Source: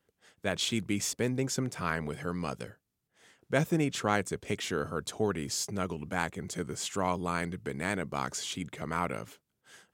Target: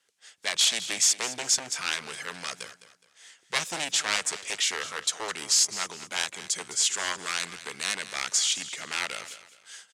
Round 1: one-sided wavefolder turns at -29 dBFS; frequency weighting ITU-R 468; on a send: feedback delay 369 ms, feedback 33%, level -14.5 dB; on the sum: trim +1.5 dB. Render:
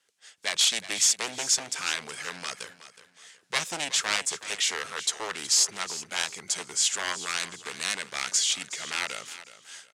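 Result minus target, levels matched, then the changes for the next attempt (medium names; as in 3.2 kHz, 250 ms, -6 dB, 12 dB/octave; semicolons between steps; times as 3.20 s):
echo 160 ms late
change: feedback delay 209 ms, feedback 33%, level -14.5 dB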